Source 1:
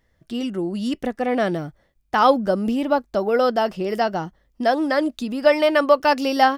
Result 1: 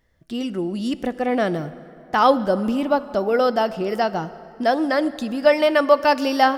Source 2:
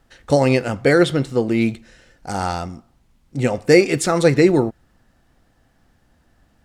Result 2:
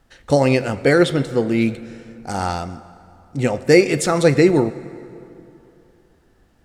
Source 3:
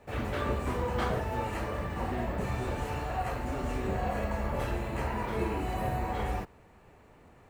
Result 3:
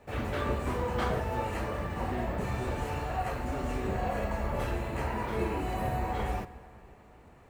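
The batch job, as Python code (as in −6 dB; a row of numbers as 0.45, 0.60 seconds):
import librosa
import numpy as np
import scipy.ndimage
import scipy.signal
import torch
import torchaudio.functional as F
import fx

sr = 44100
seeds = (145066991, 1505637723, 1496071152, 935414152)

y = fx.rev_plate(x, sr, seeds[0], rt60_s=3.0, hf_ratio=0.6, predelay_ms=0, drr_db=14.5)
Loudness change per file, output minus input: +0.5, 0.0, 0.0 LU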